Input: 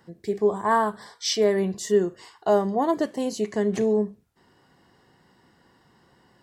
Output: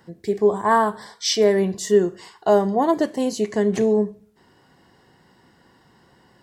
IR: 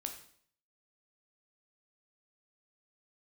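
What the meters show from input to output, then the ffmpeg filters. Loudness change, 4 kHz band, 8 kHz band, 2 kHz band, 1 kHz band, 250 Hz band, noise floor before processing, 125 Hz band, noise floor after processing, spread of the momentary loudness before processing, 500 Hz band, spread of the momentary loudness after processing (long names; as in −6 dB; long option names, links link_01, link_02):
+4.0 dB, +4.0 dB, +4.0 dB, +4.0 dB, +4.0 dB, +4.0 dB, −62 dBFS, +4.0 dB, −58 dBFS, 8 LU, +4.0 dB, 8 LU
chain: -filter_complex "[0:a]bandreject=frequency=1200:width=26,asplit=2[link_01][link_02];[1:a]atrim=start_sample=2205[link_03];[link_02][link_03]afir=irnorm=-1:irlink=0,volume=-12.5dB[link_04];[link_01][link_04]amix=inputs=2:normalize=0,volume=2.5dB"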